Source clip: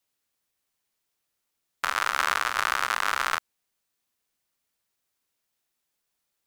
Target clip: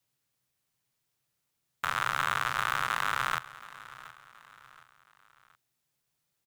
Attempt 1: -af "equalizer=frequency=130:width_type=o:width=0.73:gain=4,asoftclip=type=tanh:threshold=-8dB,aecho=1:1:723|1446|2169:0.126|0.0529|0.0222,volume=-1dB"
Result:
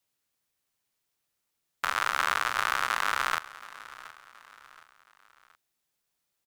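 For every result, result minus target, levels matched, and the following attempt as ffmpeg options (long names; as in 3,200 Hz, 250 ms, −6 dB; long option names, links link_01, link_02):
125 Hz band −10.5 dB; soft clipping: distortion −9 dB
-af "equalizer=frequency=130:width_type=o:width=0.73:gain=16,asoftclip=type=tanh:threshold=-8dB,aecho=1:1:723|1446|2169:0.126|0.0529|0.0222,volume=-1dB"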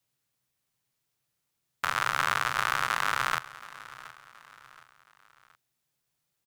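soft clipping: distortion −9 dB
-af "equalizer=frequency=130:width_type=o:width=0.73:gain=16,asoftclip=type=tanh:threshold=-15dB,aecho=1:1:723|1446|2169:0.126|0.0529|0.0222,volume=-1dB"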